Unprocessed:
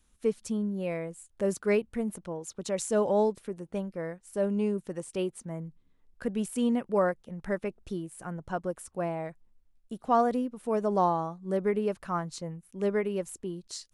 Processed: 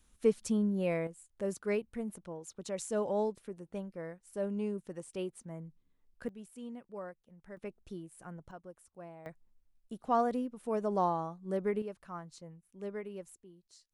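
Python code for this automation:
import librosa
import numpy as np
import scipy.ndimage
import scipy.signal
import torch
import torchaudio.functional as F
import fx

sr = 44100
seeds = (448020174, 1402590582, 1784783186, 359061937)

y = fx.gain(x, sr, db=fx.steps((0.0, 0.5), (1.07, -7.0), (6.29, -18.0), (7.57, -9.0), (8.51, -17.0), (9.26, -5.0), (11.82, -12.5), (13.35, -20.0)))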